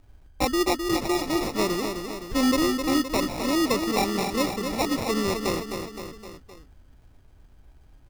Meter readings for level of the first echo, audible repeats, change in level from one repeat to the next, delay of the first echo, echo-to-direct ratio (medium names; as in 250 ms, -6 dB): -6.5 dB, 4, -5.0 dB, 259 ms, -5.0 dB